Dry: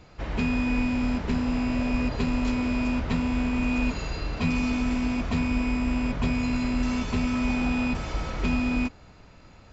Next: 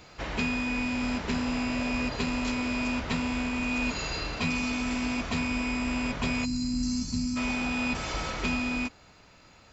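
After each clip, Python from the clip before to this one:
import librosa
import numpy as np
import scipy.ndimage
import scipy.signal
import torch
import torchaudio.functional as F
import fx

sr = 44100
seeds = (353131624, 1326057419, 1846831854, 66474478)

y = fx.spec_box(x, sr, start_s=6.45, length_s=0.92, low_hz=320.0, high_hz=4000.0, gain_db=-20)
y = fx.tilt_eq(y, sr, slope=2.0)
y = fx.rider(y, sr, range_db=4, speed_s=0.5)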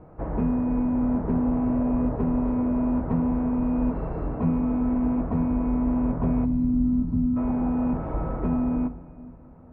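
y = scipy.signal.sosfilt(scipy.signal.bessel(4, 670.0, 'lowpass', norm='mag', fs=sr, output='sos'), x)
y = fx.room_shoebox(y, sr, seeds[0], volume_m3=3400.0, walls='mixed', distance_m=0.6)
y = F.gain(torch.from_numpy(y), 7.0).numpy()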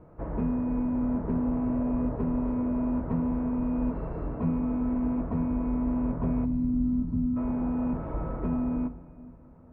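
y = fx.notch(x, sr, hz=770.0, q=12.0)
y = F.gain(torch.from_numpy(y), -4.0).numpy()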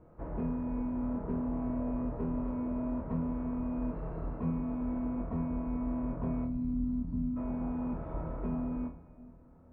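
y = fx.room_flutter(x, sr, wall_m=4.3, rt60_s=0.27)
y = F.gain(torch.from_numpy(y), -6.5).numpy()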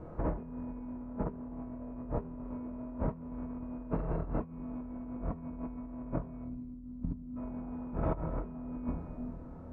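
y = fx.over_compress(x, sr, threshold_db=-40.0, ratio=-0.5)
y = fx.air_absorb(y, sr, metres=82.0)
y = F.gain(torch.from_numpy(y), 4.0).numpy()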